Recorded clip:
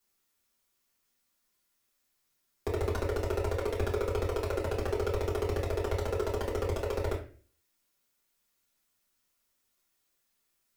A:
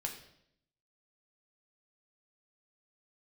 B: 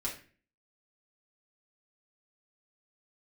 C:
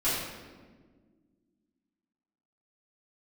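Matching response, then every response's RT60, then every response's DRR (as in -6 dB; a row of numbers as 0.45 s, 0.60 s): B; 0.70 s, 0.40 s, 1.6 s; 1.5 dB, -5.0 dB, -13.5 dB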